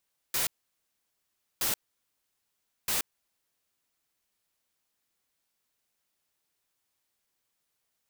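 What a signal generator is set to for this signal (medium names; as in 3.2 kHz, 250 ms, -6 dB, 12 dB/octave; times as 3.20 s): noise bursts white, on 0.13 s, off 1.14 s, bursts 3, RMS -28.5 dBFS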